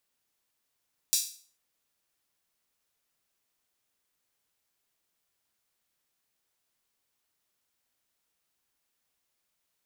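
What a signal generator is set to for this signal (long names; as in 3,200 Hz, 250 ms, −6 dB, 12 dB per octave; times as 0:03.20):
open synth hi-hat length 0.44 s, high-pass 5,000 Hz, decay 0.44 s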